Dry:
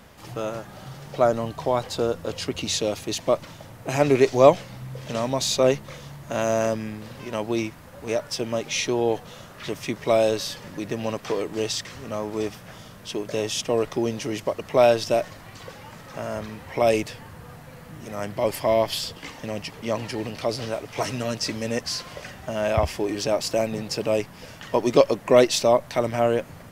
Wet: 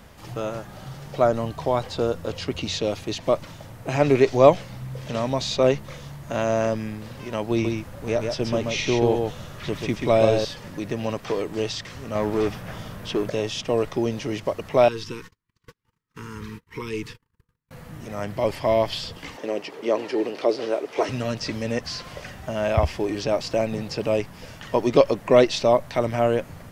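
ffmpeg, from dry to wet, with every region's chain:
-filter_complex "[0:a]asettb=1/sr,asplit=3[a][b][c];[a]atrim=end=7.514[d];[b]atrim=start=7.51:end=10.45,asetpts=PTS-STARTPTS,afade=t=in:d=0.004:c=qsin,afade=t=out:st=2.936:d=0.004:c=qsin,lowshelf=f=180:g=6.5,aecho=1:1:134:0.596,atrim=end_sample=129654[e];[c]atrim=start=10.446[f];[d][e]acrossfade=d=0.004:c1=hsin:c2=qsin[g];[g][f]acrossfade=d=0.004:c1=qsin:c2=hsin,asettb=1/sr,asplit=3[h][i][j];[h]atrim=end=12.154[k];[i]atrim=start=12.15:end=13.3,asetpts=PTS-STARTPTS,afade=t=in:d=0.004:c=qsin,afade=t=out:st=1.146:d=0.004:c=qsin,equalizer=f=6.5k:w=0.57:g=-5,acontrast=62,asoftclip=type=hard:threshold=-18dB[l];[j]atrim=start=13.296[m];[k][l]acrossfade=d=0.004:c1=hsin:c2=qsin[n];[n][m]acrossfade=d=0.004:c1=qsin:c2=hsin,asettb=1/sr,asplit=3[o][p][q];[o]atrim=end=14.884[r];[p]atrim=start=14.88:end=17.71,asetpts=PTS-STARTPTS,afade=t=in:d=0.004:c=qsin,afade=t=out:st=2.826:d=0.004:c=qsin,agate=range=-45dB:threshold=-38dB:ratio=16:release=100:detection=peak,acompressor=threshold=-34dB:ratio=1.5:attack=3.2:release=140:knee=1:detection=peak,asuperstop=centerf=660:order=12:qfactor=1.6[s];[q]atrim=start=17.706[t];[r][s]acrossfade=d=0.004:c1=hsin:c2=qsin[u];[u][t]acrossfade=d=0.004:c1=qsin:c2=hsin,asettb=1/sr,asplit=3[v][w][x];[v]atrim=end=19.374[y];[w]atrim=start=19.37:end=21.09,asetpts=PTS-STARTPTS,afade=t=in:d=0.004:c=qsin,afade=t=out:st=1.716:d=0.004:c=qsin,highpass=f=370:t=q:w=2.9,highshelf=f=7.9k:g=-9.5[z];[x]atrim=start=21.086[aa];[y][z]acrossfade=d=0.004:c1=hsin:c2=qsin[ab];[ab][aa]acrossfade=d=0.004:c1=qsin:c2=hsin,acrossover=split=5400[ac][ad];[ad]acompressor=threshold=-50dB:ratio=4:attack=1:release=60[ae];[ac][ae]amix=inputs=2:normalize=0,lowshelf=f=87:g=7.5"

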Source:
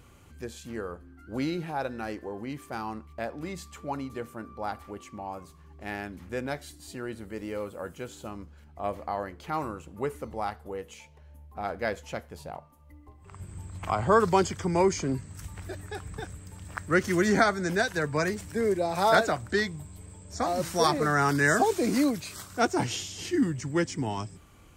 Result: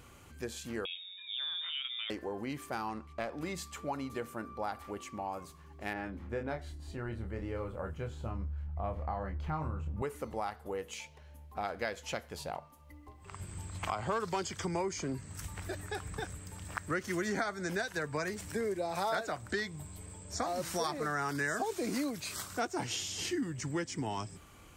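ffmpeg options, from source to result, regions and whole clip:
-filter_complex "[0:a]asettb=1/sr,asplit=3[a][b][c];[a]atrim=end=0.854[d];[b]atrim=start=0.85:end=2.1,asetpts=PTS-STARTPTS,afade=t=in:d=0.004:c=qsin,afade=t=out:st=1.246:d=0.004:c=qsin,acompressor=threshold=-38dB:ratio=3:attack=3.2:release=140:knee=1:detection=peak,lowpass=f=3.2k:t=q:w=0.5098,lowpass=f=3.2k:t=q:w=0.6013,lowpass=f=3.2k:t=q:w=0.9,lowpass=f=3.2k:t=q:w=2.563,afreqshift=-3800[e];[c]atrim=start=2.096[f];[d][e]acrossfade=d=0.004:c1=hsin:c2=qsin[g];[g][f]acrossfade=d=0.004:c1=qsin:c2=hsin,asettb=1/sr,asplit=3[h][i][j];[h]atrim=end=2.894[k];[i]atrim=start=2.89:end=3.32,asetpts=PTS-STARTPTS,afade=t=in:d=0.004:c=qsin,afade=t=out:st=0.426:d=0.004:c=qsin,lowpass=9.1k,aeval=exprs='clip(val(0),-1,0.0237)':c=same[l];[j]atrim=start=3.316[m];[k][l]acrossfade=d=0.004:c1=hsin:c2=qsin[n];[n][m]acrossfade=d=0.004:c1=qsin:c2=hsin,asettb=1/sr,asplit=3[o][p][q];[o]atrim=end=5.934[r];[p]atrim=start=5.93:end=10.02,asetpts=PTS-STARTPTS,afade=t=in:d=0.004:c=qsin,afade=t=out:st=4.086:d=0.004:c=qsin,lowpass=f=1.1k:p=1,asubboost=boost=10.5:cutoff=110,asplit=2[s][t];[t]adelay=26,volume=-5dB[u];[s][u]amix=inputs=2:normalize=0,atrim=end_sample=180369[v];[q]atrim=start=10.016[w];[r][v]acrossfade=d=0.004:c1=hsin:c2=qsin[x];[x][w]acrossfade=d=0.004:c1=qsin:c2=hsin,asettb=1/sr,asplit=3[y][z][aa];[y]atrim=end=10.934[ab];[z]atrim=start=10.93:end=14.69,asetpts=PTS-STARTPTS,afade=t=in:d=0.004:c=qsin,afade=t=out:st=3.756:d=0.004:c=qsin,equalizer=f=4.2k:t=o:w=1.9:g=4.5,asoftclip=type=hard:threshold=-13.5dB[ac];[aa]atrim=start=14.686[ad];[ab][ac]acrossfade=d=0.004:c1=hsin:c2=qsin[ae];[ae][ad]acrossfade=d=0.004:c1=qsin:c2=hsin,lowshelf=f=380:g=-5,acompressor=threshold=-35dB:ratio=4,volume=2dB"

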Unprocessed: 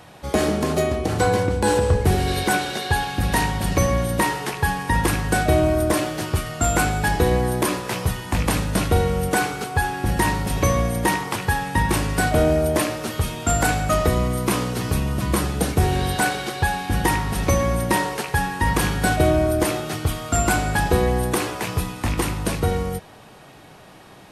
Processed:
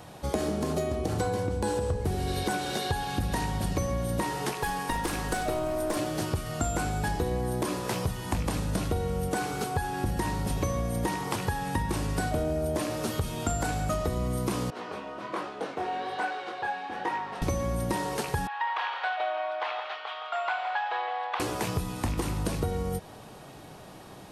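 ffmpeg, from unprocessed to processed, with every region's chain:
-filter_complex "[0:a]asettb=1/sr,asplit=3[a][b][c];[a]atrim=end=4.534[d];[b]atrim=start=4.53:end=5.97,asetpts=PTS-STARTPTS,afade=t=in:d=0.004:c=qsin,afade=t=out:st=1.436:d=0.004:c=qsin,equalizer=f=93:w=0.71:g=-13,aeval=exprs='clip(val(0),-1,0.0708)':c=same[e];[c]atrim=start=5.966[f];[d][e]acrossfade=d=0.004:c1=hsin:c2=qsin[g];[g][f]acrossfade=d=0.004:c1=qsin:c2=hsin,asettb=1/sr,asplit=3[h][i][j];[h]atrim=end=14.704[k];[i]atrim=start=14.7:end=17.42,asetpts=PTS-STARTPTS,afade=t=in:d=0.004:c=qsin,afade=t=out:st=2.716:d=0.004:c=qsin,highpass=540,lowpass=2.5k,flanger=delay=19:depth=6.9:speed=1.2[l];[j]atrim=start=17.416[m];[k][l]acrossfade=d=0.004:c1=hsin:c2=qsin[n];[n][m]acrossfade=d=0.004:c1=qsin:c2=hsin,asettb=1/sr,asplit=3[o][p][q];[o]atrim=end=18.474[r];[p]atrim=start=18.47:end=21.4,asetpts=PTS-STARTPTS,afade=t=in:d=0.004:c=qsin,afade=t=out:st=2.926:d=0.004:c=qsin,asuperpass=centerf=1600:order=8:qfactor=0.58,aecho=1:1:166:0.316,atrim=end_sample=129213[s];[q]atrim=start=21.396[t];[r][s]acrossfade=d=0.004:c1=hsin:c2=qsin[u];[u][t]acrossfade=d=0.004:c1=qsin:c2=hsin,acrossover=split=8400[v][w];[w]acompressor=threshold=-37dB:ratio=4:attack=1:release=60[x];[v][x]amix=inputs=2:normalize=0,equalizer=f=2.1k:t=o:w=1.6:g=-5.5,acompressor=threshold=-26dB:ratio=6"

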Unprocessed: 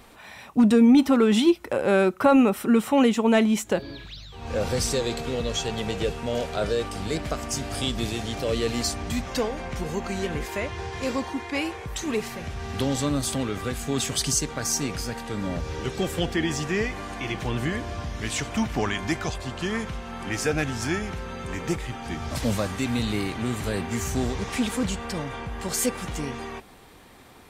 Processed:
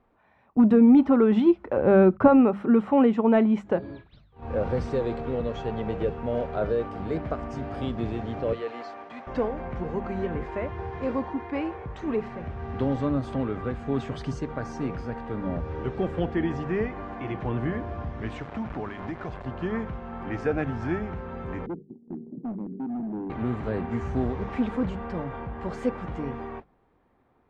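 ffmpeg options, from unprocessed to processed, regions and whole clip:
-filter_complex "[0:a]asettb=1/sr,asplit=3[a][b][c];[a]atrim=end=1.774[d];[b]atrim=start=1.77:end=2.28,asetpts=PTS-STARTPTS,afade=t=in:d=0.004:c=qsin,afade=t=out:st=0.506:d=0.004:c=qsin,agate=range=-21dB:threshold=-42dB:ratio=16:release=100:detection=peak,lowshelf=f=250:g=11.5[e];[c]atrim=start=2.276[f];[d][e]acrossfade=d=0.004:c1=hsin:c2=qsin[g];[g][f]acrossfade=d=0.004:c1=qsin:c2=hsin,asettb=1/sr,asplit=3[h][i][j];[h]atrim=end=8.534[k];[i]atrim=start=8.53:end=9.27,asetpts=PTS-STARTPTS,afade=t=in:d=0.004:c=qsin,afade=t=out:st=0.736:d=0.004:c=qsin,highpass=570,acrossover=split=5100[l][m];[m]acompressor=threshold=-45dB:ratio=4:attack=1:release=60[n];[l][n]amix=inputs=2:normalize=0[o];[j]atrim=start=9.266[p];[k][o]acrossfade=d=0.004:c1=hsin:c2=qsin[q];[q][p]acrossfade=d=0.004:c1=qsin:c2=hsin,asettb=1/sr,asplit=3[r][s][t];[r]atrim=end=18.374[u];[s]atrim=start=18.37:end=19.46,asetpts=PTS-STARTPTS,afade=t=in:d=0.004:c=qsin,afade=t=out:st=1.086:d=0.004:c=qsin,acrusher=bits=4:mix=0:aa=0.5,acompressor=threshold=-28dB:ratio=4:attack=3.2:release=140:knee=1:detection=peak[v];[t]atrim=start=19.456[w];[u][v]acrossfade=d=0.004:c1=hsin:c2=qsin[x];[x][w]acrossfade=d=0.004:c1=qsin:c2=hsin,asettb=1/sr,asplit=3[y][z][aa];[y]atrim=end=21.664[ab];[z]atrim=start=21.66:end=23.3,asetpts=PTS-STARTPTS,afade=t=in:d=0.004:c=qsin,afade=t=out:st=1.636:d=0.004:c=qsin,asuperpass=centerf=260:order=8:qfactor=1.1,asoftclip=type=hard:threshold=-29dB[ac];[aa]atrim=start=23.296[ad];[ab][ac]acrossfade=d=0.004:c1=hsin:c2=qsin[ae];[ae][ad]acrossfade=d=0.004:c1=qsin:c2=hsin,agate=range=-14dB:threshold=-39dB:ratio=16:detection=peak,lowpass=1.3k,bandreject=f=50:t=h:w=6,bandreject=f=100:t=h:w=6,bandreject=f=150:t=h:w=6,bandreject=f=200:t=h:w=6"

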